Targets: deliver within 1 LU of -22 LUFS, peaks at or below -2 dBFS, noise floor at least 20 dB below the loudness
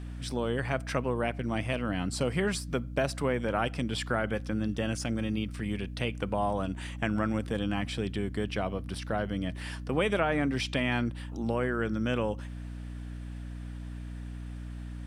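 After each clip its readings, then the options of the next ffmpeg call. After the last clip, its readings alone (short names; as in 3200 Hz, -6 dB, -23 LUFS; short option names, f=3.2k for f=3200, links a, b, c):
hum 60 Hz; harmonics up to 300 Hz; hum level -37 dBFS; loudness -32.0 LUFS; peak -12.5 dBFS; loudness target -22.0 LUFS
-> -af "bandreject=f=60:t=h:w=4,bandreject=f=120:t=h:w=4,bandreject=f=180:t=h:w=4,bandreject=f=240:t=h:w=4,bandreject=f=300:t=h:w=4"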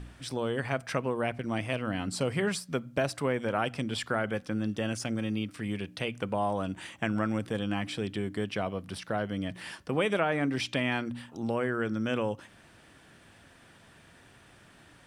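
hum none; loudness -32.0 LUFS; peak -13.0 dBFS; loudness target -22.0 LUFS
-> -af "volume=10dB"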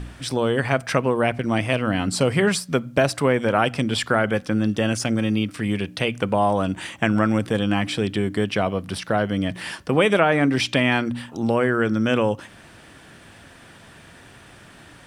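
loudness -22.0 LUFS; peak -3.0 dBFS; noise floor -47 dBFS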